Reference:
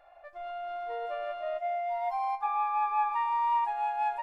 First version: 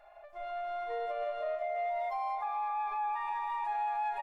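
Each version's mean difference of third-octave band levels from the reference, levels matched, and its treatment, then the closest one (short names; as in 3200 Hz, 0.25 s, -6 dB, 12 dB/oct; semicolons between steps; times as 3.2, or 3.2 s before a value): 2.5 dB: comb 4.8 ms, depth 54%; echo with dull and thin repeats by turns 0.161 s, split 870 Hz, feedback 71%, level -7 dB; limiter -28 dBFS, peak gain reduction 12.5 dB; ending taper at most 140 dB/s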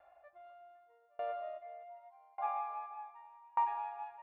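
5.0 dB: HPF 54 Hz; air absorption 300 m; echo with dull and thin repeats by turns 0.254 s, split 1100 Hz, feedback 76%, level -5.5 dB; dB-ramp tremolo decaying 0.84 Hz, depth 33 dB; gain -2.5 dB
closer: first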